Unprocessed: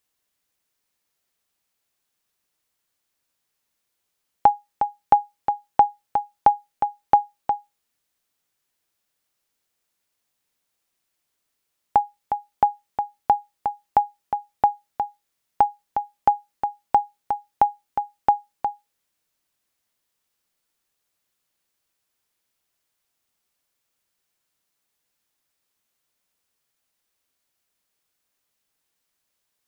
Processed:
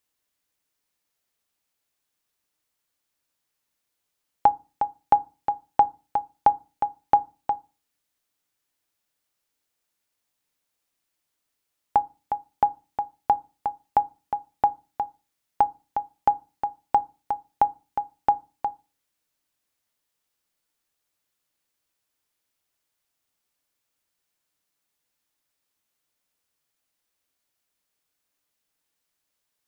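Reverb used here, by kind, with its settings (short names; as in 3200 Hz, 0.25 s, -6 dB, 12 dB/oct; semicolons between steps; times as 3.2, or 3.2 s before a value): FDN reverb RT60 0.3 s, low-frequency decay 1.45×, high-frequency decay 0.4×, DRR 15 dB; gain -2.5 dB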